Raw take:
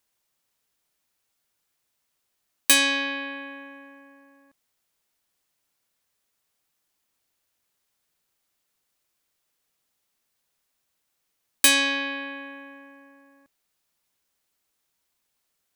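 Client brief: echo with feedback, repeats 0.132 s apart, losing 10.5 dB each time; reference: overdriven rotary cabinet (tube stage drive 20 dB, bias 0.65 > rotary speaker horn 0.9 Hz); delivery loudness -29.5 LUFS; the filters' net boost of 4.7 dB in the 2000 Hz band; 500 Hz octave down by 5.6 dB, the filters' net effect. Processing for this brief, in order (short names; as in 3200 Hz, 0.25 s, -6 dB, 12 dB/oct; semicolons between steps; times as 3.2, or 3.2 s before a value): bell 500 Hz -6.5 dB; bell 2000 Hz +6.5 dB; feedback echo 0.132 s, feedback 30%, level -10.5 dB; tube stage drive 20 dB, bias 0.65; rotary speaker horn 0.9 Hz; gain -2 dB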